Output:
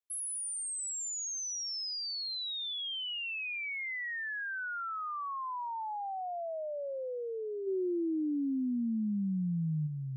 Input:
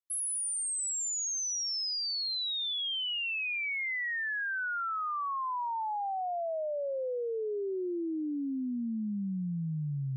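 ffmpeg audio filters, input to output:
ffmpeg -i in.wav -filter_complex "[0:a]asplit=3[link_01][link_02][link_03];[link_01]afade=type=out:start_time=7.66:duration=0.02[link_04];[link_02]acontrast=40,afade=type=in:start_time=7.66:duration=0.02,afade=type=out:start_time=9.86:duration=0.02[link_05];[link_03]afade=type=in:start_time=9.86:duration=0.02[link_06];[link_04][link_05][link_06]amix=inputs=3:normalize=0,volume=-4dB" out.wav

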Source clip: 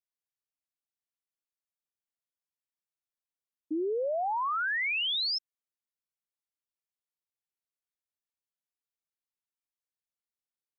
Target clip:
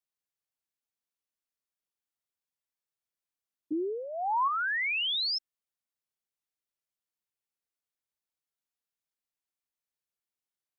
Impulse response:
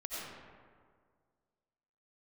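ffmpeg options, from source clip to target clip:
-filter_complex "[0:a]asettb=1/sr,asplit=3[link_01][link_02][link_03];[link_01]atrim=end=3.724[link_04];[link_02]atrim=start=3.72:end=4.48,asetpts=PTS-STARTPTS,afade=type=in:duration=0.004:curve=qsin,afade=type=out:start_time=0.756:duration=0.004:curve=qsin,aecho=1:1:0.9:0.66,atrim=end_sample=33516[link_05];[link_03]atrim=start=4.476[link_06];[link_04][link_05]acrossfade=duration=0.004:curve1=hsin:curve2=qsin[link_07];[link_07][link_06]acrossfade=duration=0.004:curve1=qsin:curve2=hsin"

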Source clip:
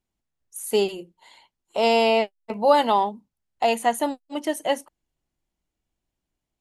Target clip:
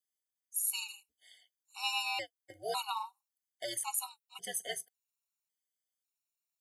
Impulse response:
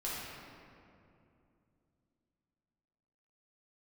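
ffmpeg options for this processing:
-af "aderivative,aeval=exprs='val(0)*sin(2*PI*110*n/s)':channel_layout=same,afftfilt=real='re*gt(sin(2*PI*0.91*pts/sr)*(1-2*mod(floor(b*sr/1024/740),2)),0)':imag='im*gt(sin(2*PI*0.91*pts/sr)*(1-2*mod(floor(b*sr/1024/740),2)),0)':win_size=1024:overlap=0.75,volume=5dB"

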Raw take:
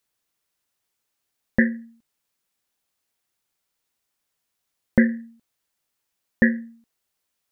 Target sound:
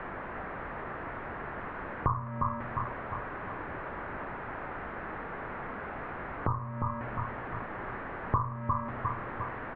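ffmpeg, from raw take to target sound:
ffmpeg -i in.wav -af "aeval=exprs='val(0)+0.5*0.0299*sgn(val(0))':channel_layout=same,aecho=1:1:272|544|816|1088|1360:0.282|0.138|0.0677|0.0332|0.0162,asetrate=33957,aresample=44100,acompressor=threshold=-28dB:ratio=6,bandreject=frequency=52.41:width_type=h:width=4,bandreject=frequency=104.82:width_type=h:width=4,bandreject=frequency=157.23:width_type=h:width=4,bandreject=frequency=209.64:width_type=h:width=4,bandreject=frequency=262.05:width_type=h:width=4,bandreject=frequency=314.46:width_type=h:width=4,bandreject=frequency=366.87:width_type=h:width=4,bandreject=frequency=419.28:width_type=h:width=4,bandreject=frequency=471.69:width_type=h:width=4,bandreject=frequency=524.1:width_type=h:width=4,bandreject=frequency=576.51:width_type=h:width=4,bandreject=frequency=628.92:width_type=h:width=4,bandreject=frequency=681.33:width_type=h:width=4,bandreject=frequency=733.74:width_type=h:width=4,bandreject=frequency=786.15:width_type=h:width=4,bandreject=frequency=838.56:width_type=h:width=4,bandreject=frequency=890.97:width_type=h:width=4,bandreject=frequency=943.38:width_type=h:width=4,bandreject=frequency=995.79:width_type=h:width=4,bandreject=frequency=1048.2:width_type=h:width=4,bandreject=frequency=1100.61:width_type=h:width=4,bandreject=frequency=1153.02:width_type=h:width=4,bandreject=frequency=1205.43:width_type=h:width=4,bandreject=frequency=1257.84:width_type=h:width=4,bandreject=frequency=1310.25:width_type=h:width=4,bandreject=frequency=1362.66:width_type=h:width=4,bandreject=frequency=1415.07:width_type=h:width=4,bandreject=frequency=1467.48:width_type=h:width=4,bandreject=frequency=1519.89:width_type=h:width=4,bandreject=frequency=1572.3:width_type=h:width=4,bandreject=frequency=1624.71:width_type=h:width=4,bandreject=frequency=1677.12:width_type=h:width=4,bandreject=frequency=1729.53:width_type=h:width=4,bandreject=frequency=1781.94:width_type=h:width=4,bandreject=frequency=1834.35:width_type=h:width=4,bandreject=frequency=1886.76:width_type=h:width=4,bandreject=frequency=1939.17:width_type=h:width=4,highpass=frequency=250:width_type=q:width=0.5412,highpass=frequency=250:width_type=q:width=1.307,lowpass=frequency=2000:width_type=q:width=0.5176,lowpass=frequency=2000:width_type=q:width=0.7071,lowpass=frequency=2000:width_type=q:width=1.932,afreqshift=-300,volume=7.5dB" out.wav

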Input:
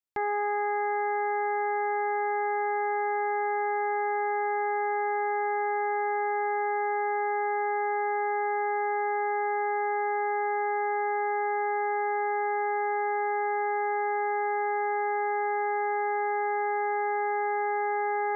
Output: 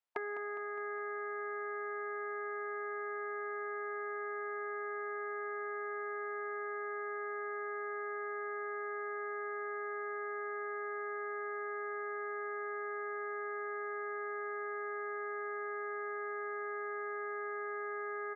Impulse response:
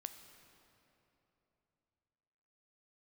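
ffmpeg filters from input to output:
-af "highpass=640,afftfilt=real='re*lt(hypot(re,im),0.0891)':imag='im*lt(hypot(re,im),0.0891)':win_size=1024:overlap=0.75,lowpass=frequency=1300:poles=1,aecho=1:1:205|410|615|820|1025|1230|1435:0.266|0.154|0.0895|0.0519|0.0301|0.0175|0.0101,volume=8dB"

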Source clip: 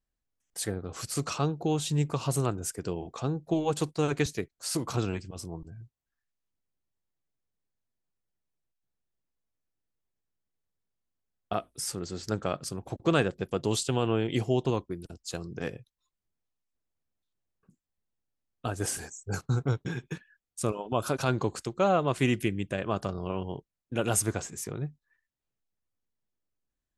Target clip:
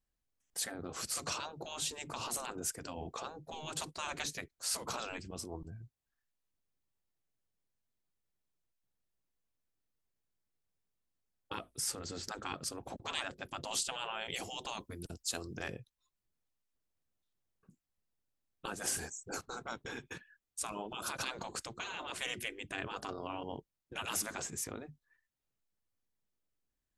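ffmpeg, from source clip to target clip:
ffmpeg -i in.wav -filter_complex "[0:a]asettb=1/sr,asplit=3[link_01][link_02][link_03];[link_01]atrim=end=14.214[link_04];[link_02]atrim=start=14.21:end=15.63,asetpts=PTS-STARTPTS,afade=type=in:duration=0.004:curve=qsin,afade=type=out:start_time=1.416:duration=0.004:curve=qsin,aemphasis=mode=production:type=cd[link_05];[link_03]atrim=start=15.626[link_06];[link_04][link_05]acrossfade=duration=0.004:curve1=hsin:curve2=qsin[link_07];[link_07][link_06]acrossfade=duration=0.004:curve1=qsin:curve2=hsin,afftfilt=real='re*lt(hypot(re,im),0.0794)':imag='im*lt(hypot(re,im),0.0794)':win_size=1024:overlap=0.75,volume=-1dB" out.wav

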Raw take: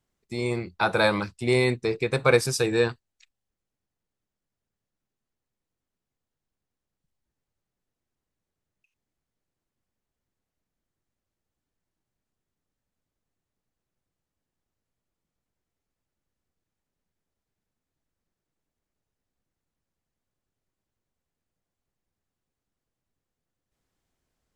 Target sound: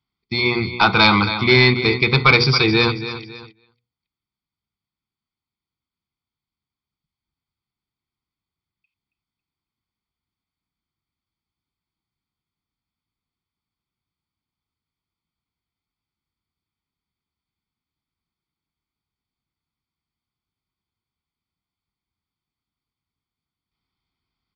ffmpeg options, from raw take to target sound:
ffmpeg -i in.wav -filter_complex "[0:a]highpass=43,highshelf=frequency=2900:gain=10.5,bandreject=frequency=60:width_type=h:width=6,bandreject=frequency=120:width_type=h:width=6,bandreject=frequency=180:width_type=h:width=6,bandreject=frequency=240:width_type=h:width=6,bandreject=frequency=300:width_type=h:width=6,bandreject=frequency=360:width_type=h:width=6,bandreject=frequency=420:width_type=h:width=6,bandreject=frequency=480:width_type=h:width=6,aecho=1:1:0.9:0.81,asplit=2[link_01][link_02];[link_02]aecho=0:1:275|550|825:0.224|0.0784|0.0274[link_03];[link_01][link_03]amix=inputs=2:normalize=0,agate=range=-14dB:threshold=-50dB:ratio=16:detection=peak,aresample=11025,asoftclip=type=tanh:threshold=-13.5dB,aresample=44100,volume=8.5dB" out.wav

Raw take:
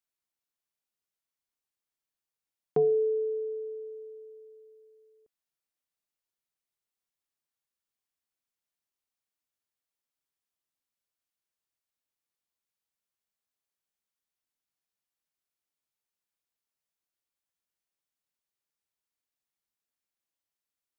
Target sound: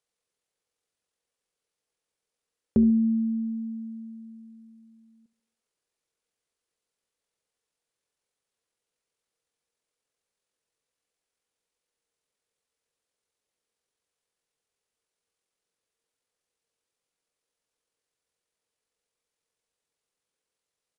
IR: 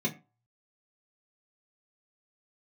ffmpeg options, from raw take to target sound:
-filter_complex "[0:a]equalizer=frequency=910:width=3.3:gain=10.5,asetrate=22696,aresample=44100,atempo=1.94306,asplit=2[link_01][link_02];[link_02]adelay=70,lowpass=frequency=1000:poles=1,volume=-15.5dB,asplit=2[link_03][link_04];[link_04]adelay=70,lowpass=frequency=1000:poles=1,volume=0.53,asplit=2[link_05][link_06];[link_06]adelay=70,lowpass=frequency=1000:poles=1,volume=0.53,asplit=2[link_07][link_08];[link_08]adelay=70,lowpass=frequency=1000:poles=1,volume=0.53,asplit=2[link_09][link_10];[link_10]adelay=70,lowpass=frequency=1000:poles=1,volume=0.53[link_11];[link_03][link_05][link_07][link_09][link_11]amix=inputs=5:normalize=0[link_12];[link_01][link_12]amix=inputs=2:normalize=0,volume=4dB"

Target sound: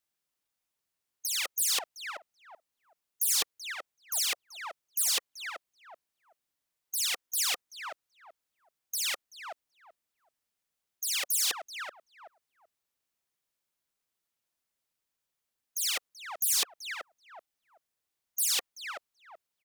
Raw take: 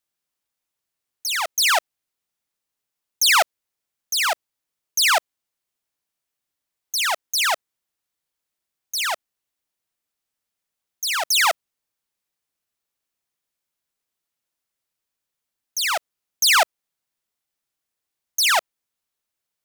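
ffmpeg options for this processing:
ffmpeg -i in.wav -filter_complex "[0:a]asplit=2[link_01][link_02];[link_02]adelay=381,lowpass=frequency=1100:poles=1,volume=-11dB,asplit=2[link_03][link_04];[link_04]adelay=381,lowpass=frequency=1100:poles=1,volume=0.22,asplit=2[link_05][link_06];[link_06]adelay=381,lowpass=frequency=1100:poles=1,volume=0.22[link_07];[link_03][link_05][link_07]amix=inputs=3:normalize=0[link_08];[link_01][link_08]amix=inputs=2:normalize=0,afftfilt=real='re*lt(hypot(re,im),0.178)':imag='im*lt(hypot(re,im),0.178)':win_size=1024:overlap=0.75,volume=-2.5dB" out.wav

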